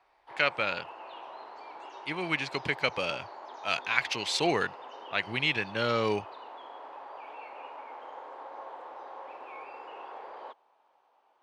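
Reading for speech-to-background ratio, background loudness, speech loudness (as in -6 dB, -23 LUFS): 15.0 dB, -45.0 LUFS, -30.0 LUFS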